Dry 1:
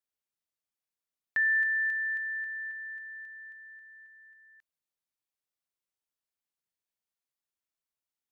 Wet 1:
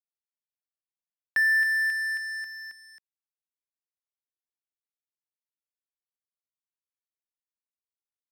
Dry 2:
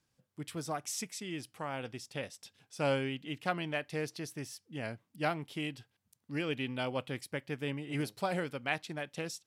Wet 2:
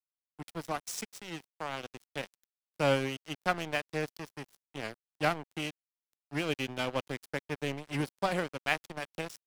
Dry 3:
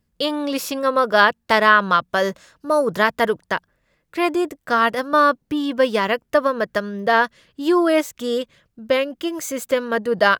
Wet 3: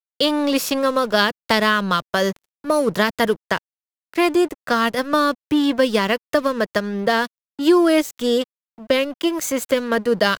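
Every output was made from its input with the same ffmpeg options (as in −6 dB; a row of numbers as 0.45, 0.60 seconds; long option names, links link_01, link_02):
-filter_complex "[0:a]aeval=exprs='sgn(val(0))*max(abs(val(0))-0.0106,0)':channel_layout=same,acrossover=split=340|3000[link_01][link_02][link_03];[link_02]acompressor=threshold=-25dB:ratio=4[link_04];[link_01][link_04][link_03]amix=inputs=3:normalize=0,volume=6dB"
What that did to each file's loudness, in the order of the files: +5.0, +2.5, 0.0 LU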